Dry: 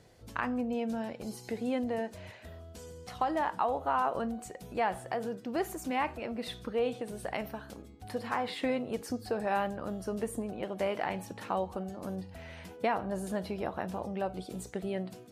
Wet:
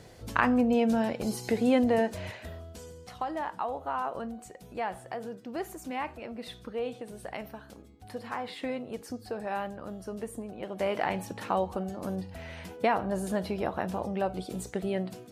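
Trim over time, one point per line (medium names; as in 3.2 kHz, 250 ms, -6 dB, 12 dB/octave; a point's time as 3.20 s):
2.27 s +8.5 dB
3.21 s -3 dB
10.54 s -3 dB
10.98 s +4 dB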